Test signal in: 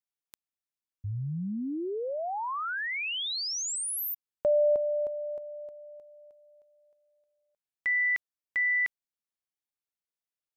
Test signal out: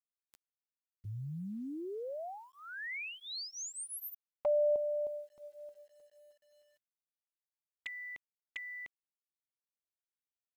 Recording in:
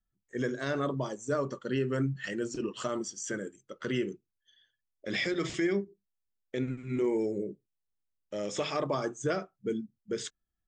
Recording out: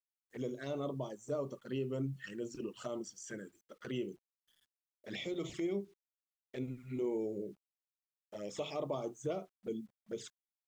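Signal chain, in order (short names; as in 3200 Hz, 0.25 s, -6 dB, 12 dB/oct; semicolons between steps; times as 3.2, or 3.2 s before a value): envelope flanger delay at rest 11.7 ms, full sweep at -29.5 dBFS; dynamic EQ 700 Hz, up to +4 dB, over -42 dBFS, Q 1.2; bit-crush 11-bit; gain -7.5 dB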